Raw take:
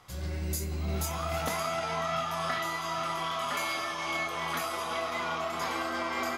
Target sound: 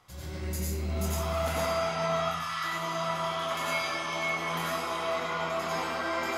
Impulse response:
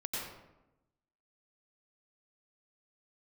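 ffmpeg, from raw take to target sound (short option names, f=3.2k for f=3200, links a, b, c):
-filter_complex "[0:a]asettb=1/sr,asplit=3[a][b][c];[a]atrim=end=2.204[d];[b]atrim=start=2.2:end=2.64,asetpts=PTS-STARTPTS,afade=t=in:d=0.004:c=qsin,afade=t=out:st=0.436:d=0.004:c=qsin,highpass=f=1.1k:w=0.5412,highpass=f=1.1k:w=1.3066[e];[c]atrim=start=2.636[f];[d][e]acrossfade=d=0.004:c1=hsin:c2=qsin[g];[g][f]acrossfade=d=0.004:c1=qsin:c2=hsin[h];[1:a]atrim=start_sample=2205[i];[h][i]afir=irnorm=-1:irlink=0,volume=-1.5dB"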